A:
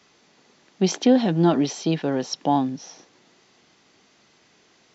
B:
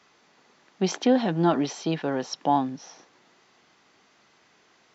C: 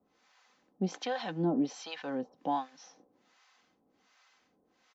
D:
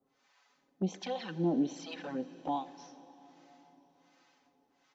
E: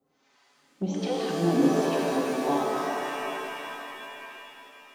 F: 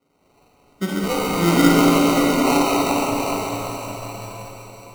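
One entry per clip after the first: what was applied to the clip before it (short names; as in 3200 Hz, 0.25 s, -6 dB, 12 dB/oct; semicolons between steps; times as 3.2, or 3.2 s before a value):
bell 1200 Hz +7 dB 2.1 oct; gain -5.5 dB
comb 3.9 ms, depth 45%; harmonic tremolo 1.3 Hz, depth 100%, crossover 670 Hz; gain -4.5 dB
envelope flanger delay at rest 7.6 ms, full sweep at -29.5 dBFS; plate-style reverb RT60 4.7 s, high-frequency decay 0.95×, DRR 14 dB
shimmer reverb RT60 3.2 s, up +7 st, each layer -2 dB, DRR -2.5 dB; gain +2.5 dB
sample-and-hold 26×; Schroeder reverb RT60 3.1 s, combs from 31 ms, DRR 1 dB; gain +5.5 dB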